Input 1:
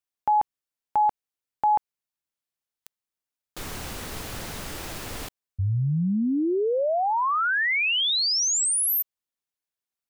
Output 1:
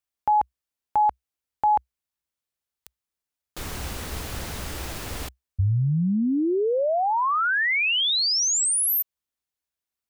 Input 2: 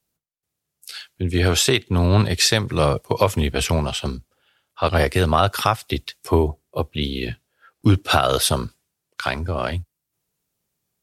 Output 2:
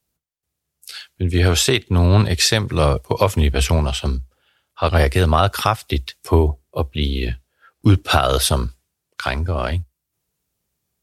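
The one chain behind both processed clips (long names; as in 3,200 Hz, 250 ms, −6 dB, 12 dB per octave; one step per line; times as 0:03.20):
parametric band 63 Hz +11 dB 0.62 octaves
level +1 dB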